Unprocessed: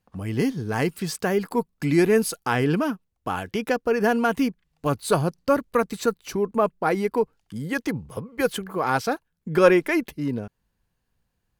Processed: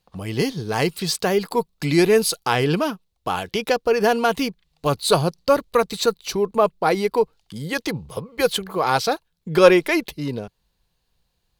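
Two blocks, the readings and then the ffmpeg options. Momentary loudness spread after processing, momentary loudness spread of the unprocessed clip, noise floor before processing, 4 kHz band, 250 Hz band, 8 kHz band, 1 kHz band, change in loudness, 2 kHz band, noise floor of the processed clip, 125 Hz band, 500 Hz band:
12 LU, 11 LU, -76 dBFS, +10.5 dB, 0.0 dB, +6.0 dB, +4.0 dB, +3.0 dB, +2.5 dB, -72 dBFS, +1.5 dB, +3.5 dB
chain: -af "equalizer=f=100:t=o:w=0.67:g=-6,equalizer=f=250:t=o:w=0.67:g=-8,equalizer=f=1.6k:t=o:w=0.67:g=-5,equalizer=f=4k:t=o:w=0.67:g=9,volume=5dB"

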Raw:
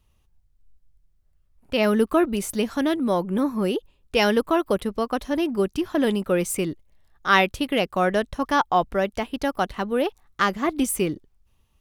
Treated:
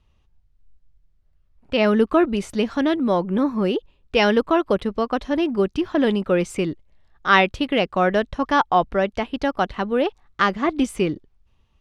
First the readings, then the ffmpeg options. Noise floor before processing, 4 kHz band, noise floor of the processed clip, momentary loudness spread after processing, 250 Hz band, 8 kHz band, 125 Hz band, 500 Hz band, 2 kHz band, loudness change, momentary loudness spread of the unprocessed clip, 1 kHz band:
-65 dBFS, +1.5 dB, -62 dBFS, 7 LU, +2.5 dB, -9.0 dB, +2.5 dB, +2.5 dB, +2.5 dB, +2.5 dB, 7 LU, +2.5 dB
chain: -af "lowpass=4.6k,volume=2.5dB"

